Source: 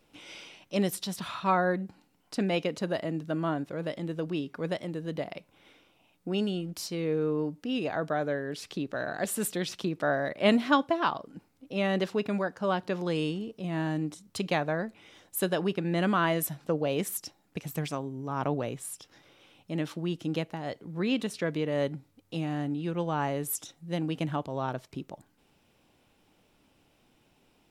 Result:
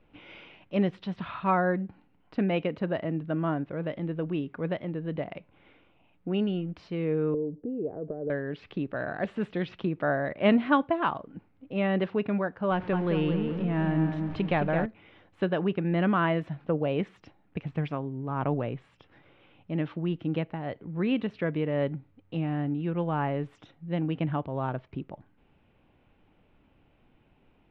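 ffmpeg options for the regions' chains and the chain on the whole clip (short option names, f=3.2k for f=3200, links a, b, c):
-filter_complex "[0:a]asettb=1/sr,asplit=3[a][b][c];[a]atrim=end=7.344[d];[b]atrim=start=7.34:end=8.3,asetpts=PTS-STARTPTS,afade=t=in:d=0.004:c=qsin,afade=t=out:st=0.956:d=0.004:c=qsin,acompressor=threshold=-35dB:ratio=6:attack=3.2:release=140:knee=1:detection=peak,lowpass=f=440:t=q:w=3.8[e];[c]atrim=start=8.296[f];[d][e]acrossfade=d=0.004:c1=hsin:c2=qsin[g];[g][f]acrossfade=d=0.004:c1=qsin:c2=hsin,asettb=1/sr,asplit=3[h][i][j];[h]atrim=end=12.714[k];[i]atrim=start=12.71:end=14.86,asetpts=PTS-STARTPTS,afade=t=in:d=0.004:c=qsin,afade=t=out:st=2.146:d=0.004:c=qsin,aeval=exprs='val(0)+0.5*0.0119*sgn(val(0))':c=same,asplit=2[l][m];[m]adelay=216,lowpass=f=2.4k:p=1,volume=-5.5dB,asplit=2[n][o];[o]adelay=216,lowpass=f=2.4k:p=1,volume=0.39,asplit=2[p][q];[q]adelay=216,lowpass=f=2.4k:p=1,volume=0.39,asplit=2[r][s];[s]adelay=216,lowpass=f=2.4k:p=1,volume=0.39,asplit=2[t][u];[u]adelay=216,lowpass=f=2.4k:p=1,volume=0.39[v];[l][n][p][r][t][v]amix=inputs=6:normalize=0,atrim=end_sample=94815[w];[j]atrim=start=14.856[x];[k][w]acrossfade=d=0.004:c1=hsin:c2=qsin[y];[y][x]acrossfade=d=0.004:c1=qsin:c2=hsin,lowpass=f=2.8k:w=0.5412,lowpass=f=2.8k:w=1.3066,lowshelf=f=120:g=9.5"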